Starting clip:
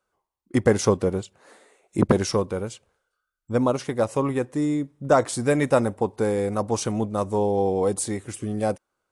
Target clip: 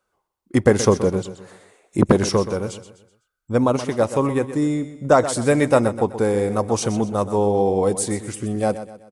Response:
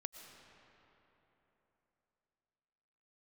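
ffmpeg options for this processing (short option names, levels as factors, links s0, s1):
-af "aecho=1:1:126|252|378|504:0.237|0.0949|0.0379|0.0152,volume=1.5"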